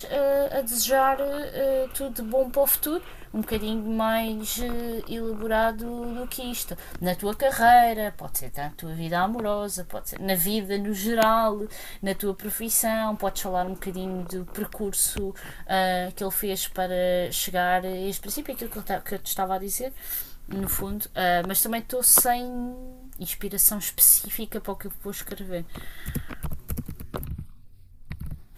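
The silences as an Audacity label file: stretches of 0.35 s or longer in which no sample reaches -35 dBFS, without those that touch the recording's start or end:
27.430000	28.110000	silence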